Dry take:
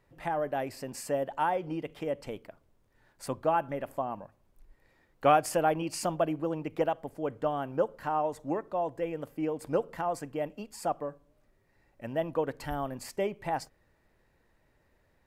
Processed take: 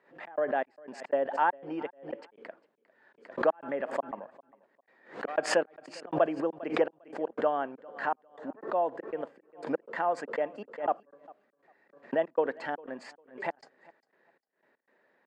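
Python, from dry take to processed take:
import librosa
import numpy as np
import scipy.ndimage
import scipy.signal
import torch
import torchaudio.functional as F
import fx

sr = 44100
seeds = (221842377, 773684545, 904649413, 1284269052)

y = fx.high_shelf(x, sr, hz=2900.0, db=-11.0)
y = fx.step_gate(y, sr, bpm=120, pattern='xx.xx..x.x', floor_db=-60.0, edge_ms=4.5)
y = fx.cabinet(y, sr, low_hz=250.0, low_slope=24, high_hz=6500.0, hz=(300.0, 1700.0, 5800.0), db=(-5, 7, -7))
y = fx.echo_feedback(y, sr, ms=401, feedback_pct=23, wet_db=-23.0)
y = fx.pre_swell(y, sr, db_per_s=140.0)
y = y * librosa.db_to_amplitude(3.5)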